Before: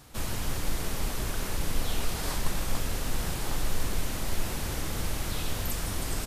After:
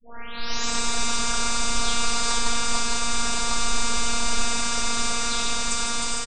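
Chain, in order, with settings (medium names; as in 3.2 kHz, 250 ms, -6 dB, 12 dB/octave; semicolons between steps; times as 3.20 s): tape start-up on the opening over 1.24 s; tone controls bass -14 dB, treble +4 dB; band-stop 2.7 kHz, Q 15; comb 5 ms; robot voice 235 Hz; level rider gain up to 11.5 dB; steep low-pass 8.6 kHz 72 dB/octave; multi-tap echo 65/93/457/621 ms -17/-8.5/-6.5/-8 dB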